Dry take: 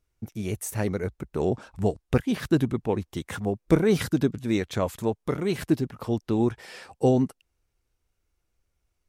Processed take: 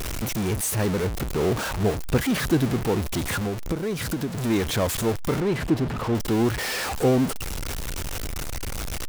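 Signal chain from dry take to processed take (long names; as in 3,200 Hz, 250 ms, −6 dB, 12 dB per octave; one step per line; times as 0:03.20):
converter with a step at zero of −21.5 dBFS
0:03.38–0:04.38: downward compressor 6 to 1, threshold −23 dBFS, peak gain reduction 11 dB
0:05.40–0:06.15: low-pass filter 2,000 Hz 6 dB per octave
level −1.5 dB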